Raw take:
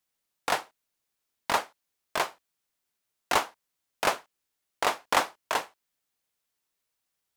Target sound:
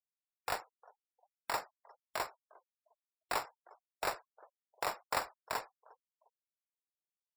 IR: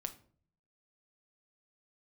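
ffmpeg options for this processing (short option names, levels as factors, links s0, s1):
-filter_complex "[0:a]highpass=f=360:w=0.5412,highpass=f=360:w=1.3066,equalizer=f=3100:w=5.4:g=-12.5,acompressor=threshold=0.0141:ratio=1.5,asplit=2[s0][s1];[s1]adelay=354,lowpass=f=1100:p=1,volume=0.0891,asplit=2[s2][s3];[s3]adelay=354,lowpass=f=1100:p=1,volume=0.47,asplit=2[s4][s5];[s5]adelay=354,lowpass=f=1100:p=1,volume=0.47[s6];[s0][s2][s4][s6]amix=inputs=4:normalize=0,acrusher=samples=7:mix=1:aa=0.000001,afftfilt=real='re*gte(hypot(re,im),0.00282)':imag='im*gte(hypot(re,im),0.00282)':win_size=1024:overlap=0.75,volume=0.631"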